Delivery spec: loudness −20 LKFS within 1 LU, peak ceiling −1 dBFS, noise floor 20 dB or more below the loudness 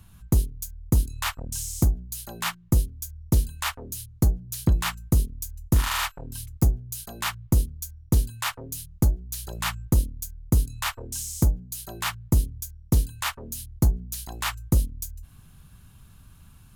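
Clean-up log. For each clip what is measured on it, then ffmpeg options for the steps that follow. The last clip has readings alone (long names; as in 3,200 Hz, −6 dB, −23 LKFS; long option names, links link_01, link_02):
integrated loudness −27.0 LKFS; sample peak −9.0 dBFS; target loudness −20.0 LKFS
→ -af "volume=7dB"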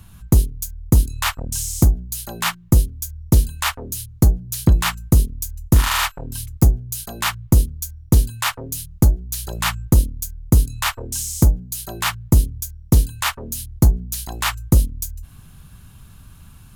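integrated loudness −20.0 LKFS; sample peak −2.0 dBFS; background noise floor −46 dBFS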